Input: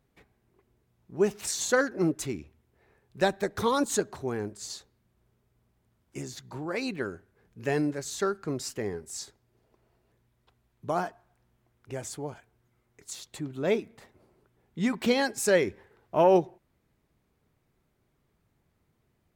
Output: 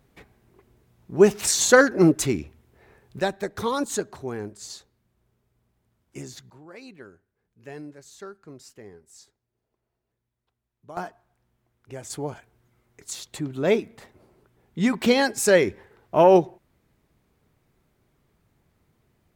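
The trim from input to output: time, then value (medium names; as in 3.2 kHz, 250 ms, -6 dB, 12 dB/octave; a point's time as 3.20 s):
+9.5 dB
from 3.19 s 0 dB
from 6.50 s -12 dB
from 10.97 s -1.5 dB
from 12.10 s +5.5 dB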